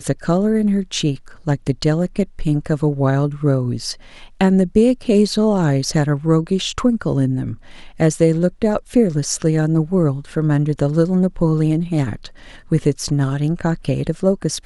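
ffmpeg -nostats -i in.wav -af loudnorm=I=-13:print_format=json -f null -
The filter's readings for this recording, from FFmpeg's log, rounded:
"input_i" : "-18.5",
"input_tp" : "-1.8",
"input_lra" : "3.4",
"input_thresh" : "-28.8",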